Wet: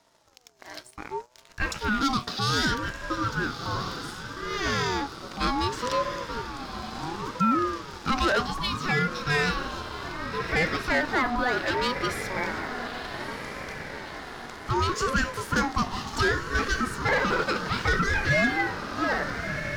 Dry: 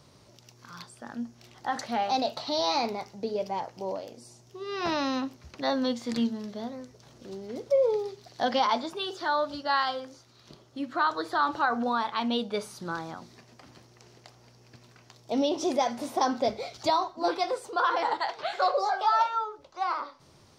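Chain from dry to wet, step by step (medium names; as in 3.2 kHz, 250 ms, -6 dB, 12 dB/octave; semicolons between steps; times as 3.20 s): peaking EQ 260 Hz -3.5 dB 2.3 oct; echo that smears into a reverb 1341 ms, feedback 61%, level -10.5 dB; waveshaping leveller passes 2; speed mistake 24 fps film run at 25 fps; ring modulator with a swept carrier 640 Hz, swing 25%, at 0.66 Hz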